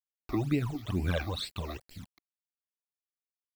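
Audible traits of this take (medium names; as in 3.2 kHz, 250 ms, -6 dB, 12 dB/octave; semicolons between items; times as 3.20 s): a quantiser's noise floor 8-bit, dither none; phasing stages 12, 2.2 Hz, lowest notch 150–1200 Hz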